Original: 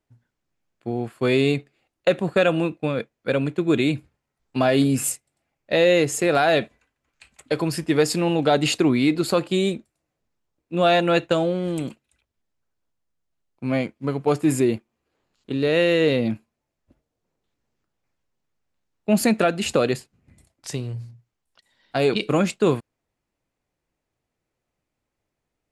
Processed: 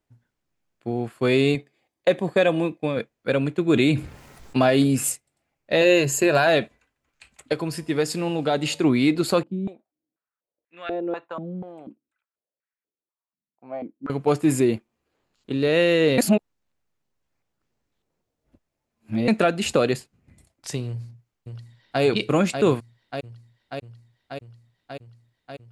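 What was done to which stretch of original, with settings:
1.55–2.97 notch comb 1400 Hz
3.69–4.7 fast leveller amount 50%
5.81–6.47 ripple EQ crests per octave 1.4, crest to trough 10 dB
7.53–8.84 resonator 52 Hz, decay 1.5 s, harmonics odd, mix 40%
9.43–14.1 stepped band-pass 4.1 Hz 210–1900 Hz
16.18–19.28 reverse
20.87–22.02 echo throw 0.59 s, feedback 80%, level -6 dB

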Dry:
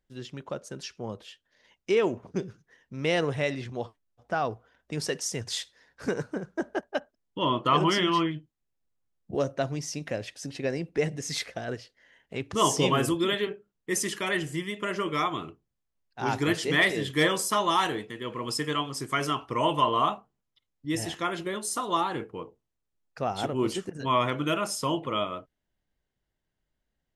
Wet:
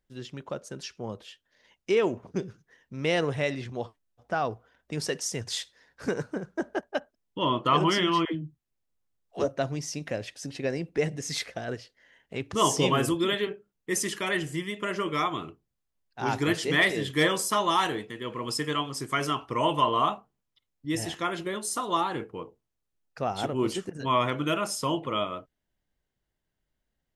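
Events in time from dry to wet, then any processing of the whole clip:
8.25–9.48 dispersion lows, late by 99 ms, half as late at 370 Hz

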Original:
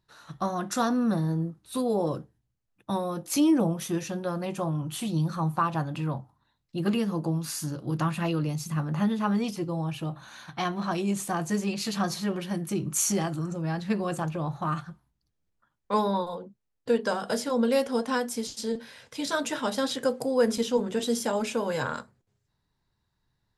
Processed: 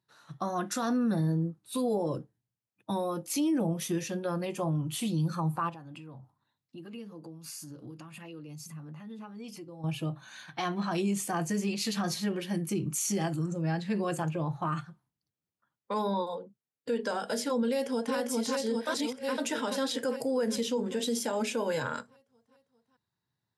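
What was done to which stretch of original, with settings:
5.69–9.84 compressor, threshold -39 dBFS
17.68–18.16 echo throw 0.4 s, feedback 70%, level -3 dB
18.87–19.38 reverse
whole clip: HPF 98 Hz 24 dB/oct; spectral noise reduction 7 dB; limiter -22 dBFS

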